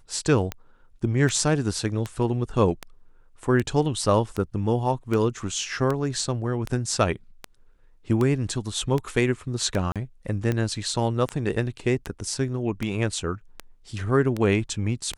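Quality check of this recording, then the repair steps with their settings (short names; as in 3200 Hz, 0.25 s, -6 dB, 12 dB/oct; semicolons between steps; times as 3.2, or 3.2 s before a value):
tick 78 rpm -14 dBFS
9.92–9.96 gap 37 ms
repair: de-click; interpolate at 9.92, 37 ms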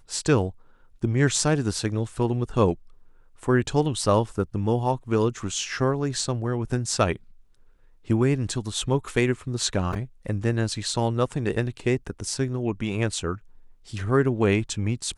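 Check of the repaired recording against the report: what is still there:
none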